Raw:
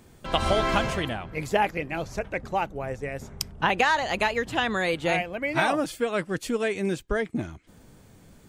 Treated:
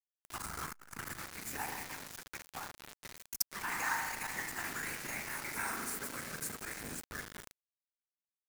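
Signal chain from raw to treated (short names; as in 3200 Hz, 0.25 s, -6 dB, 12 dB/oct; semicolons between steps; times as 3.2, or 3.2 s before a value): pre-emphasis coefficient 0.9; fixed phaser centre 1400 Hz, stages 4; echoes that change speed 0.312 s, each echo +2 st, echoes 2, each echo -6 dB; whisperiser; spring tank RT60 1.5 s, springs 38 ms, chirp 65 ms, DRR 2 dB; bit-crush 7-bit; dynamic EQ 3000 Hz, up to -6 dB, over -54 dBFS, Q 1.6; core saturation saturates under 2200 Hz; gain +2 dB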